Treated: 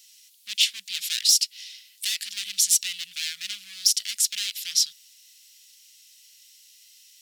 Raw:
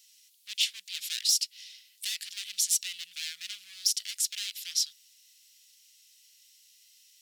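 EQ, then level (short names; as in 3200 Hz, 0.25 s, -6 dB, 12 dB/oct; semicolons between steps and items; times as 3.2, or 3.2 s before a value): bell 210 Hz +12.5 dB 0.76 oct; +6.5 dB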